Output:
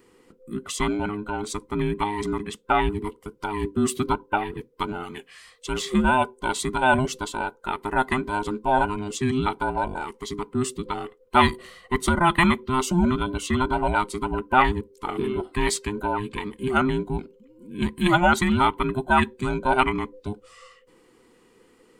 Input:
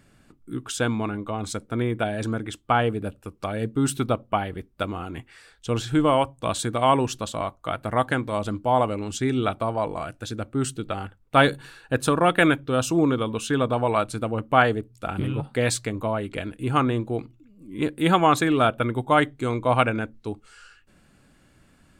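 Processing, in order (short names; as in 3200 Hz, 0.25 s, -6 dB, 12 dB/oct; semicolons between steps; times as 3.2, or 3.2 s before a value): band inversion scrambler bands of 500 Hz; 5.03–5.94 tilt shelf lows -4.5 dB, about 1100 Hz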